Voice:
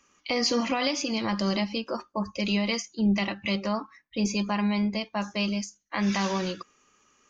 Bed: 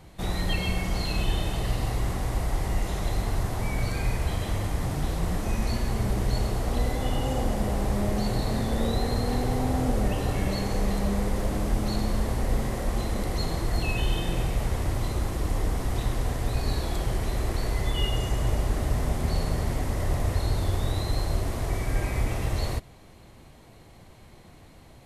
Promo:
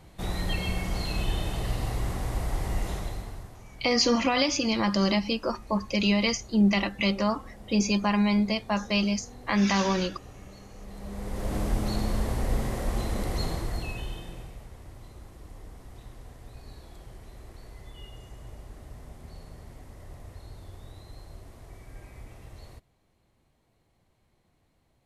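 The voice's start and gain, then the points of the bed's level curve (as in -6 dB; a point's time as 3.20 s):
3.55 s, +2.5 dB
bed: 2.92 s -2.5 dB
3.63 s -20 dB
10.78 s -20 dB
11.56 s -1.5 dB
13.46 s -1.5 dB
14.68 s -19 dB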